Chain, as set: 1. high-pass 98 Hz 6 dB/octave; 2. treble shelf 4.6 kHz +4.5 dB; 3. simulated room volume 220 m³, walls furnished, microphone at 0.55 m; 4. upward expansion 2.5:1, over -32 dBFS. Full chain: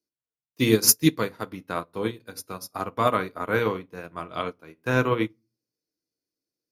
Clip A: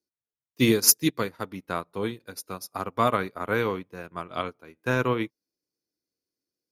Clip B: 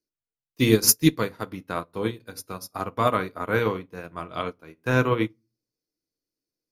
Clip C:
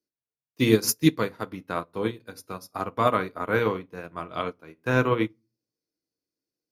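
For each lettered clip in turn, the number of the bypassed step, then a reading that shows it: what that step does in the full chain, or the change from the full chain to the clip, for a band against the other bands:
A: 3, crest factor change +1.5 dB; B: 1, 125 Hz band +2.5 dB; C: 2, 8 kHz band -8.0 dB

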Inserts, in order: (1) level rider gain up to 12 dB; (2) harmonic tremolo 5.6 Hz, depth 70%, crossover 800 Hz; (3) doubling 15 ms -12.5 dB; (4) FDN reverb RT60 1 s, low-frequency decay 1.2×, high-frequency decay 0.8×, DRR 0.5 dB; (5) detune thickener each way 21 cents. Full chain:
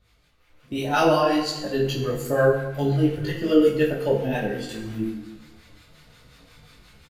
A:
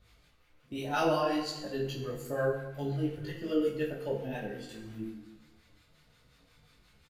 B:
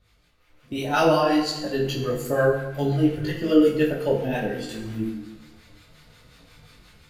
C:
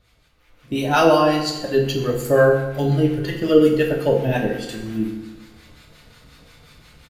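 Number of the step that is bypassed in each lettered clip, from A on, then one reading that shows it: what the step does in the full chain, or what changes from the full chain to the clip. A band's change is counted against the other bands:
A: 1, momentary loudness spread change +2 LU; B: 3, momentary loudness spread change +1 LU; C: 5, loudness change +4.0 LU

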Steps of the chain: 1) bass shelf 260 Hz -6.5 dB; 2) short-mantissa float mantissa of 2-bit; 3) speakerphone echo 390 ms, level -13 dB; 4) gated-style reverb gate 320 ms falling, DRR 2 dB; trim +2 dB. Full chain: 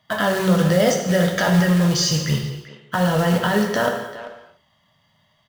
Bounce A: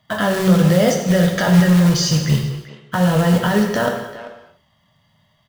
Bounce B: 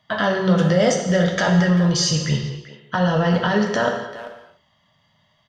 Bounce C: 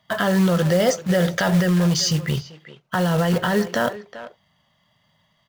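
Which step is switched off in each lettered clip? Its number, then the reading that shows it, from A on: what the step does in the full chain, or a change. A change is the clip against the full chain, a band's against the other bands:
1, 125 Hz band +4.0 dB; 2, distortion -20 dB; 4, momentary loudness spread change -4 LU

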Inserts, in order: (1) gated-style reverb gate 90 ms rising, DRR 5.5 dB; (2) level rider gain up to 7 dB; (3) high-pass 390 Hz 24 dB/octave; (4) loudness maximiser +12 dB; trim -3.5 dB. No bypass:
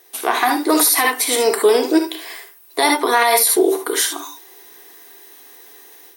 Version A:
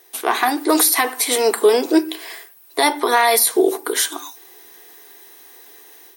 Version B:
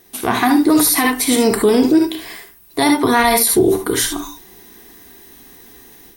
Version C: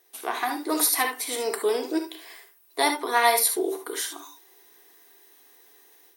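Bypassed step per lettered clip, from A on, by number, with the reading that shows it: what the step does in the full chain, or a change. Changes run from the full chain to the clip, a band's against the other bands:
1, momentary loudness spread change -2 LU; 3, 250 Hz band +7.5 dB; 4, crest factor change +7.5 dB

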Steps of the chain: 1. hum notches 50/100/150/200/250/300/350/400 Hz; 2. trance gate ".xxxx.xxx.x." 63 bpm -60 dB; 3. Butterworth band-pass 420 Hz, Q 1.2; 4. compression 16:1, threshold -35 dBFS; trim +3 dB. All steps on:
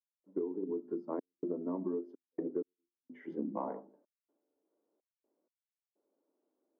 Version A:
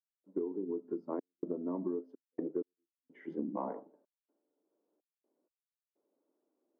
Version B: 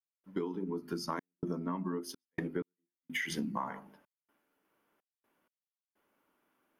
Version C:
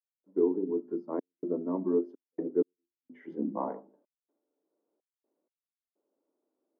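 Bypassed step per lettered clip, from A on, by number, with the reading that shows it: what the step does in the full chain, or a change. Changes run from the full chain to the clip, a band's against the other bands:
1, momentary loudness spread change -2 LU; 3, 2 kHz band +19.5 dB; 4, mean gain reduction 4.0 dB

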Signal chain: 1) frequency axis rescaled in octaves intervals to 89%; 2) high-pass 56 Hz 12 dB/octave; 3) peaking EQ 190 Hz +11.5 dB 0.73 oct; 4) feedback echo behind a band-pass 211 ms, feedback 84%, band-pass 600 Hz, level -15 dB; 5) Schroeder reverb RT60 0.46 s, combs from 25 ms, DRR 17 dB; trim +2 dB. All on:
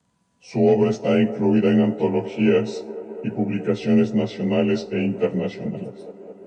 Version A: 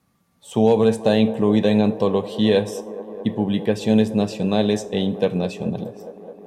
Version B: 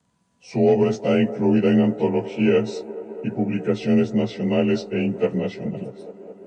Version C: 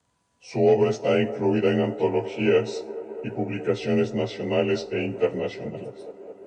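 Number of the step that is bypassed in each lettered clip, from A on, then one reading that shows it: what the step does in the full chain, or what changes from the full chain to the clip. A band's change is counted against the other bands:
1, 4 kHz band +5.5 dB; 5, echo-to-direct -12.0 dB to -14.0 dB; 3, 250 Hz band -7.0 dB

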